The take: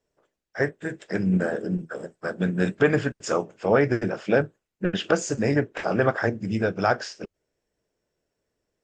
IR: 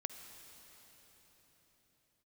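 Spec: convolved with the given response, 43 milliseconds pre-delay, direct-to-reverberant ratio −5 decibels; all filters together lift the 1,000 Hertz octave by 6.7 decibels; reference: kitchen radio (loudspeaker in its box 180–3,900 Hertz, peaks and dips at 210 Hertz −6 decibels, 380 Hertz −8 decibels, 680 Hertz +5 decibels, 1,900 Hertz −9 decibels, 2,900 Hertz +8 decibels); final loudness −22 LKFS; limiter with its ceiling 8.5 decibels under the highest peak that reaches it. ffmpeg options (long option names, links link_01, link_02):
-filter_complex "[0:a]equalizer=frequency=1000:width_type=o:gain=8,alimiter=limit=-12.5dB:level=0:latency=1,asplit=2[link_01][link_02];[1:a]atrim=start_sample=2205,adelay=43[link_03];[link_02][link_03]afir=irnorm=-1:irlink=0,volume=6.5dB[link_04];[link_01][link_04]amix=inputs=2:normalize=0,highpass=180,equalizer=frequency=210:width_type=q:width=4:gain=-6,equalizer=frequency=380:width_type=q:width=4:gain=-8,equalizer=frequency=680:width_type=q:width=4:gain=5,equalizer=frequency=1900:width_type=q:width=4:gain=-9,equalizer=frequency=2900:width_type=q:width=4:gain=8,lowpass=frequency=3900:width=0.5412,lowpass=frequency=3900:width=1.3066"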